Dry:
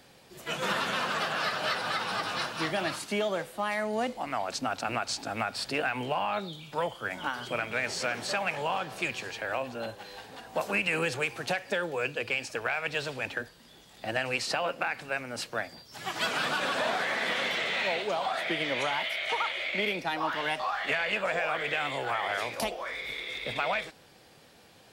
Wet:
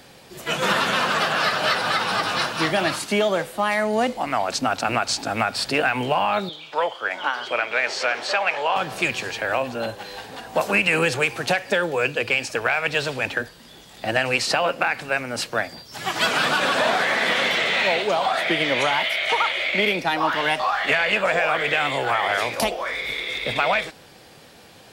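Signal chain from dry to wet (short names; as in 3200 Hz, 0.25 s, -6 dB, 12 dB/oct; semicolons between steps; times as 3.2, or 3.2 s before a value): 6.49–8.76 three-band isolator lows -21 dB, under 360 Hz, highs -15 dB, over 5900 Hz; gain +9 dB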